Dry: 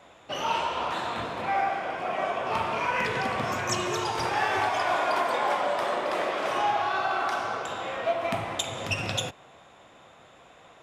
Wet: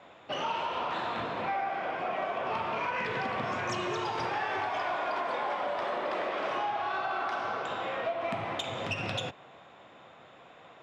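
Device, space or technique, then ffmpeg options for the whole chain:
AM radio: -af "highpass=100,lowpass=4000,acompressor=threshold=-28dB:ratio=6,asoftclip=type=tanh:threshold=-21dB"

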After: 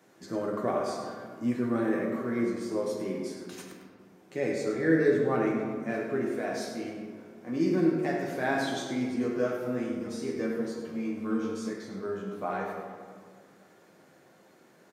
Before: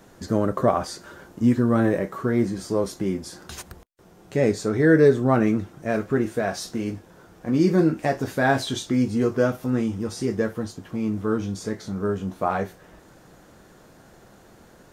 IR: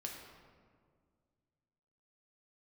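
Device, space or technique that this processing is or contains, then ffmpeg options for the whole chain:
PA in a hall: -filter_complex "[0:a]highpass=110,highpass=170,equalizer=frequency=2200:width_type=o:width=0.46:gain=5,aecho=1:1:102:0.316[link_01];[1:a]atrim=start_sample=2205[link_02];[link_01][link_02]afir=irnorm=-1:irlink=0,asettb=1/sr,asplit=3[link_03][link_04][link_05];[link_03]atrim=end=10.354[link_06];[link_04]atrim=start=10.35:end=11.71,asetpts=PTS-STARTPTS,afade=type=in:duration=0.004:curve=qsin,afade=type=out:start_time=1.356:duration=0.004:curve=qsin,asplit=2[link_07][link_08];[link_08]adelay=13,volume=-3dB[link_09];[link_07][link_09]amix=inputs=2:normalize=0,atrim=end_sample=59976[link_10];[link_05]atrim=start=11.706[link_11];[link_06][link_10]acrossfade=duration=0.004:curve1=hsin:curve2=qsin[link_12];[link_12][link_11]acrossfade=duration=0.004:curve1=qsin:curve2=hsin,volume=-6dB"

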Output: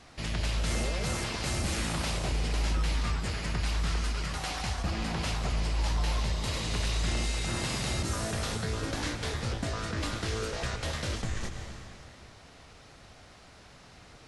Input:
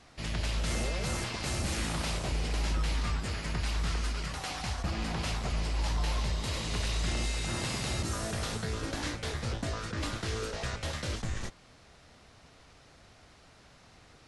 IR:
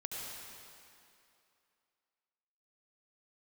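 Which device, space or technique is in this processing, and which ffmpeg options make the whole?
ducked reverb: -filter_complex "[0:a]asplit=3[link_01][link_02][link_03];[1:a]atrim=start_sample=2205[link_04];[link_02][link_04]afir=irnorm=-1:irlink=0[link_05];[link_03]apad=whole_len=629550[link_06];[link_05][link_06]sidechaincompress=threshold=-38dB:ratio=8:attack=9.4:release=203,volume=-2dB[link_07];[link_01][link_07]amix=inputs=2:normalize=0"

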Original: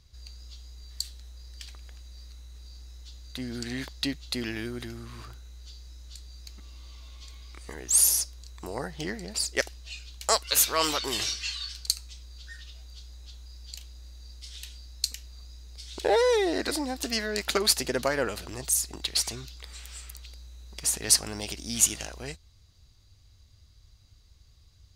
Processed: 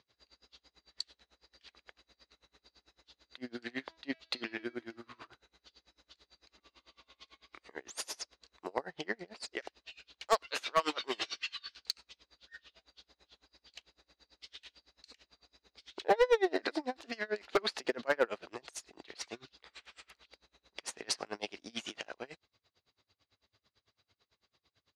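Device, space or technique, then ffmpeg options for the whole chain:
helicopter radio: -filter_complex "[0:a]highpass=350,lowpass=2900,aeval=exprs='val(0)*pow(10,-30*(0.5-0.5*cos(2*PI*9*n/s))/20)':channel_layout=same,asoftclip=type=hard:threshold=-23.5dB,asettb=1/sr,asplit=3[link_01][link_02][link_03];[link_01]atrim=end=3.814[link_04];[link_02]atrim=start=3.81:end=5.27,asetpts=PTS-STARTPTS,afade=type=in:duration=0.004:curve=qsin,afade=type=out:start_time=1.456:duration=0.004:curve=qsin,bandreject=frequency=326.2:width_type=h:width=4,bandreject=frequency=652.4:width_type=h:width=4,bandreject=frequency=978.6:width_type=h:width=4,bandreject=frequency=1304.8:width_type=h:width=4,bandreject=frequency=1631:width_type=h:width=4,bandreject=frequency=1957.2:width_type=h:width=4,bandreject=frequency=2283.4:width_type=h:width=4,bandreject=frequency=2609.6:width_type=h:width=4,bandreject=frequency=2935.8:width_type=h:width=4,bandreject=frequency=3262:width_type=h:width=4,bandreject=frequency=3588.2:width_type=h:width=4,bandreject=frequency=3914.4:width_type=h:width=4,bandreject=frequency=4240.6:width_type=h:width=4,bandreject=frequency=4566.8:width_type=h:width=4,bandreject=frequency=4893:width_type=h:width=4,bandreject=frequency=5219.2:width_type=h:width=4,bandreject=frequency=5545.4:width_type=h:width=4,bandreject=frequency=5871.6:width_type=h:width=4,bandreject=frequency=6197.8:width_type=h:width=4[link_05];[link_03]atrim=start=5.266[link_06];[link_04][link_05]acrossfade=duration=0.004:curve1=hsin:curve2=qsin[link_07];[link_07][link_06]acrossfade=duration=0.004:curve1=qsin:curve2=hsin,volume=4dB"

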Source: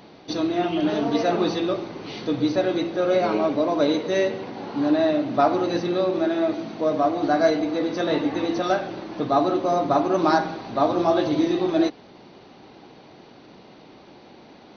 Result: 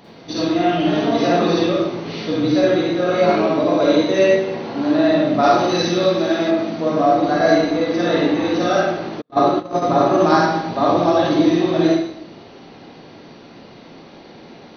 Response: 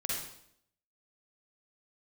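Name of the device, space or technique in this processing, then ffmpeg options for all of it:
bathroom: -filter_complex "[1:a]atrim=start_sample=2205[link_01];[0:a][link_01]afir=irnorm=-1:irlink=0,asettb=1/sr,asplit=3[link_02][link_03][link_04];[link_02]atrim=end=5.434[link_05];[link_03]atrim=start=5.43:end=6.51,asetpts=PTS-STARTPTS,afade=type=in:duration=0.004:curve=qsin,afade=type=out:start_time=1.076:duration=0.004:curve=qsin,aemphasis=mode=production:type=75fm[link_06];[link_04]atrim=start=6.506[link_07];[link_05][link_06]acrossfade=duration=0.004:curve1=hsin:curve2=qsin[link_08];[link_08][link_07]acrossfade=duration=0.004:curve1=qsin:curve2=hsin,asplit=3[link_09][link_10][link_11];[link_09]afade=type=out:start_time=9.2:duration=0.02[link_12];[link_10]agate=range=-51dB:threshold=-17dB:ratio=16:detection=peak,afade=type=in:start_time=9.2:duration=0.02,afade=type=out:start_time=9.81:duration=0.02[link_13];[link_11]afade=type=in:start_time=9.81:duration=0.02[link_14];[link_12][link_13][link_14]amix=inputs=3:normalize=0,volume=2.5dB"

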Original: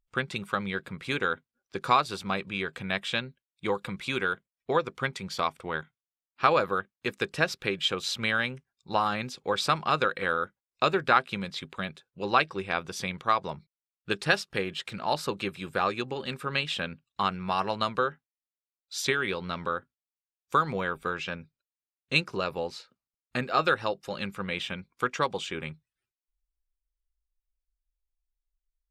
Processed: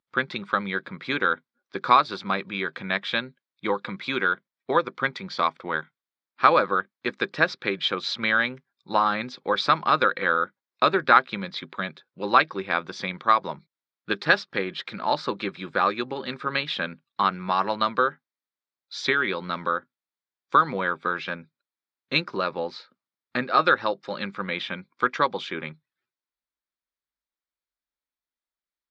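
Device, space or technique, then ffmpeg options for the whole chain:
kitchen radio: -af "highpass=230,equalizer=frequency=440:width_type=q:width=4:gain=-6,equalizer=frequency=720:width_type=q:width=4:gain=-5,equalizer=frequency=2800:width_type=q:width=4:gain=-10,lowpass=frequency=4300:width=0.5412,lowpass=frequency=4300:width=1.3066,volume=6.5dB"

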